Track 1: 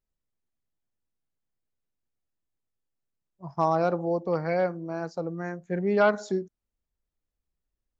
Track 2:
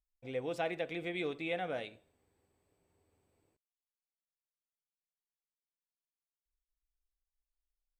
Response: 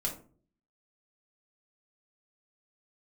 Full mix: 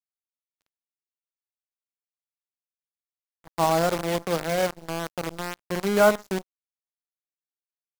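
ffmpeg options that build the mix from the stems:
-filter_complex "[0:a]equalizer=f=63:w=4.4:g=-13.5,volume=1.5dB,asplit=2[a][b];[b]volume=-15dB[c];[1:a]aecho=1:1:4.1:0.71,bandreject=f=87.02:t=h:w=4,bandreject=f=174.04:t=h:w=4,bandreject=f=261.06:t=h:w=4,bandreject=f=348.08:t=h:w=4,bandreject=f=435.1:t=h:w=4,bandreject=f=522.12:t=h:w=4,bandreject=f=609.14:t=h:w=4,bandreject=f=696.16:t=h:w=4,bandreject=f=783.18:t=h:w=4,bandreject=f=870.2:t=h:w=4,bandreject=f=957.22:t=h:w=4,bandreject=f=1.04424k:t=h:w=4,bandreject=f=1.13126k:t=h:w=4,bandreject=f=1.21828k:t=h:w=4,bandreject=f=1.3053k:t=h:w=4,bandreject=f=1.39232k:t=h:w=4,bandreject=f=1.47934k:t=h:w=4,bandreject=f=1.56636k:t=h:w=4,bandreject=f=1.65338k:t=h:w=4,bandreject=f=1.7404k:t=h:w=4,bandreject=f=1.82742k:t=h:w=4,bandreject=f=1.91444k:t=h:w=4,bandreject=f=2.00146k:t=h:w=4,bandreject=f=2.08848k:t=h:w=4,bandreject=f=2.1755k:t=h:w=4,bandreject=f=2.26252k:t=h:w=4,bandreject=f=2.34954k:t=h:w=4,bandreject=f=2.43656k:t=h:w=4,volume=-14dB,asplit=2[d][e];[e]volume=-11dB[f];[2:a]atrim=start_sample=2205[g];[c][f]amix=inputs=2:normalize=0[h];[h][g]afir=irnorm=-1:irlink=0[i];[a][d][i]amix=inputs=3:normalize=0,equalizer=f=120:w=4.7:g=-8,acrusher=bits=5:dc=4:mix=0:aa=0.000001,aeval=exprs='sgn(val(0))*max(abs(val(0))-0.0224,0)':c=same"

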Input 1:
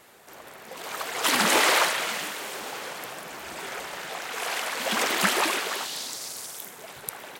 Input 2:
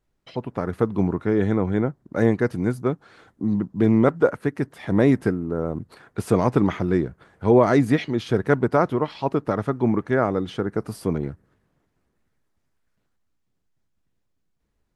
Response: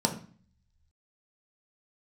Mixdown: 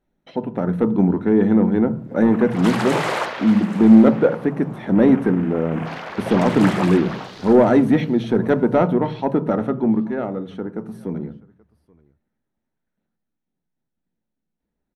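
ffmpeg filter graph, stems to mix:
-filter_complex "[0:a]afwtdn=0.0158,tiltshelf=f=1.5k:g=6,adelay=1400,volume=-2dB,asplit=2[a][b];[b]volume=-15dB[c];[1:a]equalizer=f=7k:t=o:w=1.1:g=-4.5,bandreject=f=7.6k:w=8.1,asoftclip=type=tanh:threshold=-11dB,volume=-0.5dB,afade=t=out:st=9.56:d=0.5:silence=0.421697,asplit=3[d][e][f];[e]volume=-13dB[g];[f]volume=-22.5dB[h];[2:a]atrim=start_sample=2205[i];[g][i]afir=irnorm=-1:irlink=0[j];[c][h]amix=inputs=2:normalize=0,aecho=0:1:830:1[k];[a][d][j][k]amix=inputs=4:normalize=0,highshelf=f=5.1k:g=-5"

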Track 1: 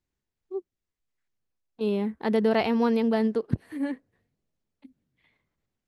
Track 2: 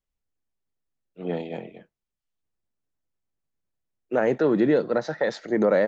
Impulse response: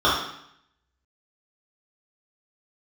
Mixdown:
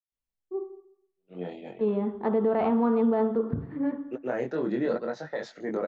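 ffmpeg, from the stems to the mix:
-filter_complex "[0:a]lowpass=1.4k,agate=range=-33dB:threshold=-55dB:ratio=3:detection=peak,volume=-0.5dB,asplit=3[a][b][c];[b]volume=-23.5dB[d];[1:a]flanger=delay=20:depth=4.6:speed=0.57,volume=-1.5dB,asplit=2[e][f];[f]volume=-3.5dB[g];[c]apad=whole_len=258881[h];[e][h]sidechaingate=range=-45dB:threshold=-58dB:ratio=16:detection=peak[i];[2:a]atrim=start_sample=2205[j];[d][j]afir=irnorm=-1:irlink=0[k];[g]aecho=0:1:120:1[l];[a][i][k][l]amix=inputs=4:normalize=0,alimiter=limit=-17dB:level=0:latency=1:release=42"

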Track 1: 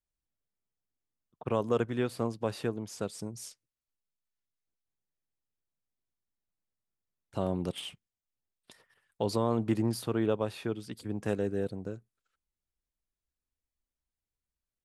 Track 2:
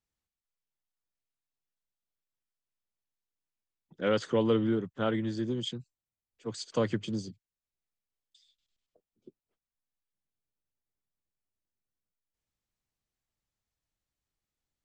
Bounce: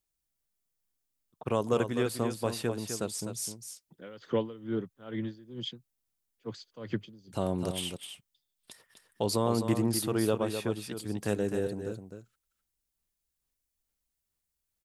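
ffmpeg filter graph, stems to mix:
-filter_complex "[0:a]highshelf=f=5.1k:g=11.5,volume=0.5dB,asplit=2[a][b];[b]volume=-8dB[c];[1:a]lowpass=f=5.5k:w=0.5412,lowpass=f=5.5k:w=1.3066,aeval=exprs='val(0)*pow(10,-21*(0.5-0.5*cos(2*PI*2.3*n/s))/20)':c=same,volume=-0.5dB[d];[c]aecho=0:1:255:1[e];[a][d][e]amix=inputs=3:normalize=0"

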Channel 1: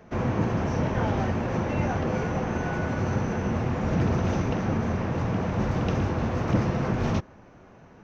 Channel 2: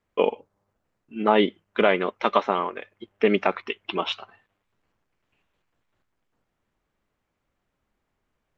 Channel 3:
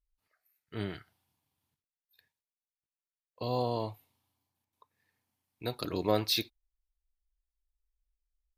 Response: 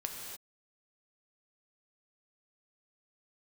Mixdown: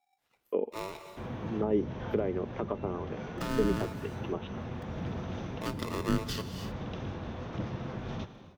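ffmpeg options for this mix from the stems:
-filter_complex "[0:a]equalizer=f=3.5k:w=3.3:g=10.5,adelay=1050,volume=-16.5dB,asplit=2[a][b];[b]volume=-3.5dB[c];[1:a]lowpass=2.6k,equalizer=f=390:w=0.68:g=12,adelay=350,volume=-14.5dB[d];[2:a]aeval=exprs='val(0)*sgn(sin(2*PI*770*n/s))':c=same,volume=2dB,asplit=2[e][f];[f]volume=-8dB[g];[3:a]atrim=start_sample=2205[h];[c][g]amix=inputs=2:normalize=0[i];[i][h]afir=irnorm=-1:irlink=0[j];[a][d][e][j]amix=inputs=4:normalize=0,acrossover=split=390[k][l];[l]acompressor=threshold=-37dB:ratio=4[m];[k][m]amix=inputs=2:normalize=0,highshelf=f=6.6k:g=-5.5"

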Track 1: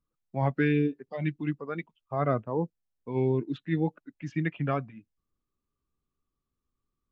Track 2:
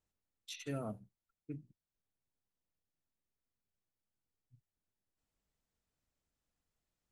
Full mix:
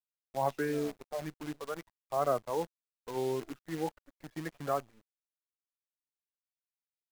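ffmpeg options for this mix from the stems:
-filter_complex "[0:a]lowpass=1.1k,volume=2.5dB[a];[1:a]equalizer=f=270:t=o:w=1.6:g=7,volume=-3.5dB[b];[a][b]amix=inputs=2:normalize=0,acrossover=split=470 2200:gain=0.126 1 0.141[c][d][e];[c][d][e]amix=inputs=3:normalize=0,acrusher=bits=8:dc=4:mix=0:aa=0.000001"

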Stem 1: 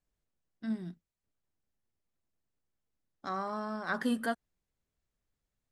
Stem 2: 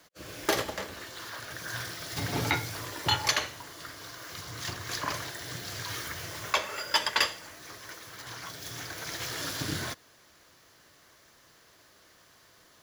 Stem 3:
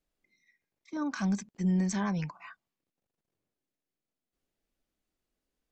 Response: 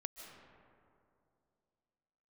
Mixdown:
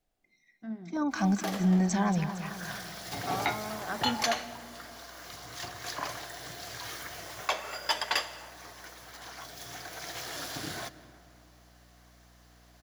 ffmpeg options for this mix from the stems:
-filter_complex "[0:a]lowpass=2.2k,volume=-6.5dB,asplit=2[a][b];[b]volume=-5dB[c];[1:a]highpass=f=180:p=1,aeval=exprs='val(0)+0.002*(sin(2*PI*60*n/s)+sin(2*PI*2*60*n/s)/2+sin(2*PI*3*60*n/s)/3+sin(2*PI*4*60*n/s)/4+sin(2*PI*5*60*n/s)/5)':c=same,adelay=950,volume=-6.5dB,asplit=2[d][e];[e]volume=-5dB[f];[2:a]volume=2.5dB,asplit=3[g][h][i];[h]volume=-11dB[j];[i]apad=whole_len=607410[k];[d][k]sidechaincompress=threshold=-39dB:ratio=8:attack=16:release=299[l];[3:a]atrim=start_sample=2205[m];[c][f]amix=inputs=2:normalize=0[n];[n][m]afir=irnorm=-1:irlink=0[o];[j]aecho=0:1:229|458|687|916|1145|1374|1603|1832:1|0.52|0.27|0.141|0.0731|0.038|0.0198|0.0103[p];[a][l][g][o][p]amix=inputs=5:normalize=0,equalizer=f=730:t=o:w=0.3:g=10.5"

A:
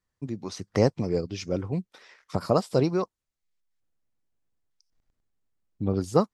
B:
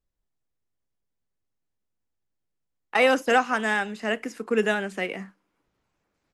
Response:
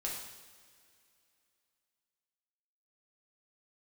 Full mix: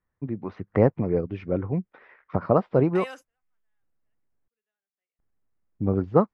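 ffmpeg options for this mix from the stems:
-filter_complex "[0:a]lowpass=f=2.1k:w=0.5412,lowpass=f=2.1k:w=1.3066,volume=2.5dB,asplit=3[a][b][c];[a]atrim=end=4.48,asetpts=PTS-STARTPTS,afade=t=out:st=4.476:d=0.004:c=hsin[d];[b]atrim=start=4.48:end=5.19,asetpts=PTS-STARTPTS,volume=0[e];[c]atrim=start=5.19,asetpts=PTS-STARTPTS,afade=t=in:d=0.004:c=hsin[f];[d][e][f]concat=n=3:v=0:a=1,asplit=2[g][h];[1:a]highpass=f=880:p=1,volume=-15.5dB[i];[h]apad=whole_len=279221[j];[i][j]sidechaingate=range=-48dB:threshold=-47dB:ratio=16:detection=peak[k];[g][k]amix=inputs=2:normalize=0"

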